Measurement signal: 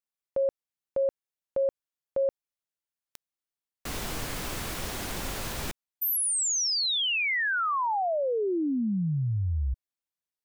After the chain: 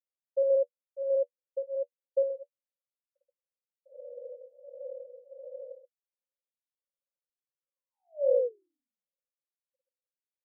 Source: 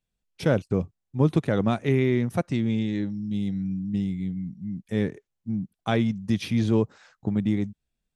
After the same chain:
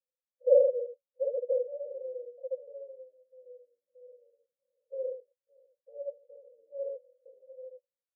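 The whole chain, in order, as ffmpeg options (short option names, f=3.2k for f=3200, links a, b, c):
-filter_complex "[0:a]asuperpass=centerf=530:order=8:qfactor=5.9,aecho=1:1:52.48|128.3:0.891|0.631,asplit=2[a][b];[b]afreqshift=-1.4[c];[a][c]amix=inputs=2:normalize=1,volume=5dB"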